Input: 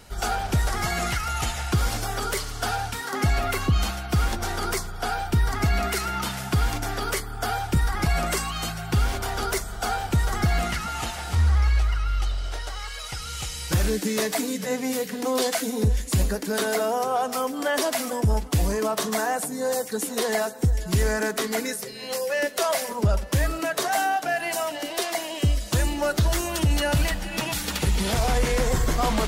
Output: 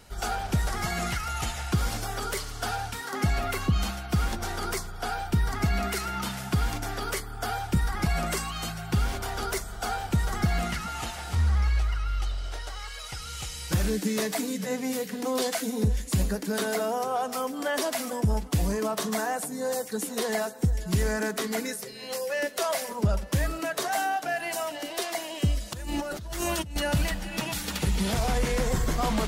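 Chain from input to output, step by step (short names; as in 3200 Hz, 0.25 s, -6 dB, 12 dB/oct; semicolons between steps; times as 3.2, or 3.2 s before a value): dynamic EQ 190 Hz, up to +5 dB, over -39 dBFS, Q 2.6; 25.73–26.76 negative-ratio compressor -29 dBFS, ratio -1; gain -4 dB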